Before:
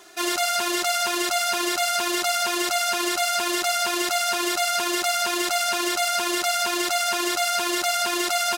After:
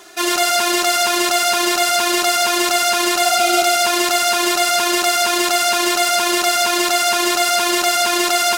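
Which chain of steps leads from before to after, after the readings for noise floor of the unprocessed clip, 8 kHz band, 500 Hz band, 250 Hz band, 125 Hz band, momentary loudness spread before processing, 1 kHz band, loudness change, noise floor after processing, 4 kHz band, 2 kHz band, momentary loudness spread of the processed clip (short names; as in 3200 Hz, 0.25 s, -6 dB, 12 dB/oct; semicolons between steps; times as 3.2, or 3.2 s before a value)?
-28 dBFS, +7.5 dB, +8.0 dB, +7.5 dB, n/a, 0 LU, +8.0 dB, +7.5 dB, -20 dBFS, +7.5 dB, +7.0 dB, 1 LU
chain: spectral repair 3.28–3.62, 430–2100 Hz; lo-fi delay 0.137 s, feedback 35%, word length 7-bit, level -7 dB; gain +6.5 dB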